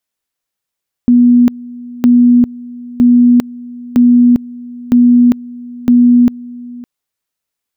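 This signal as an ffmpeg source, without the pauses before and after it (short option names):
-f lavfi -i "aevalsrc='pow(10,(-3.5-21.5*gte(mod(t,0.96),0.4))/20)*sin(2*PI*243*t)':d=5.76:s=44100"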